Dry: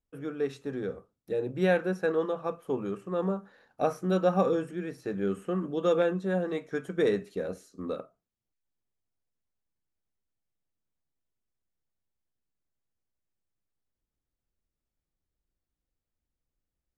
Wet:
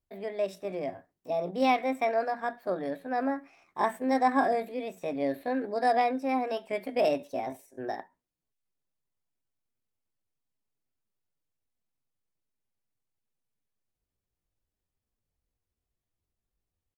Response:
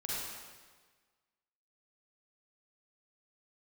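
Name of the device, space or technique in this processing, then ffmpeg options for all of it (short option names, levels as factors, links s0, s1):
chipmunk voice: -af "asetrate=62367,aresample=44100,atempo=0.707107"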